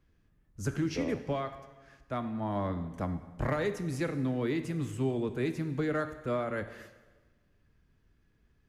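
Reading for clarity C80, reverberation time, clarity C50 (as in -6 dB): 13.0 dB, 1.3 s, 11.0 dB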